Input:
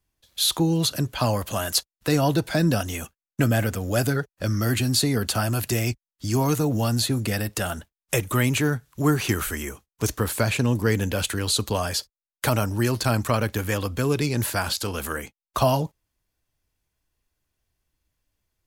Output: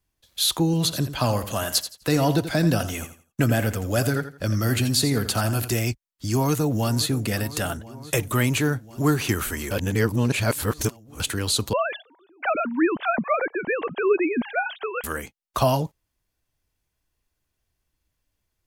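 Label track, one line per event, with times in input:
0.650000	5.790000	feedback echo 84 ms, feedback 25%, level -11.5 dB
6.300000	7.220000	echo throw 0.52 s, feedback 80%, level -16.5 dB
7.770000	8.890000	mismatched tape noise reduction decoder only
9.710000	11.200000	reverse
11.730000	15.040000	sine-wave speech

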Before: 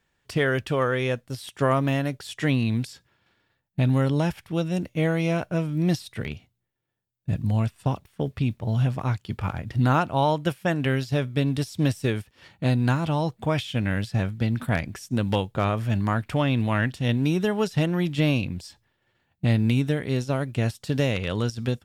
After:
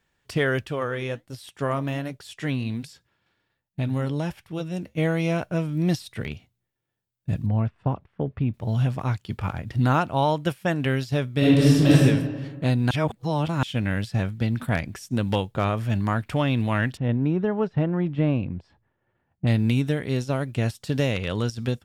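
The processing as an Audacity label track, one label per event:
0.660000	4.980000	flange 1.3 Hz, delay 1.8 ms, depth 5.4 ms, regen -79%
7.460000	8.540000	LPF 1700 Hz
11.380000	12.030000	reverb throw, RT60 1.4 s, DRR -9 dB
12.910000	13.630000	reverse
16.970000	19.470000	LPF 1400 Hz

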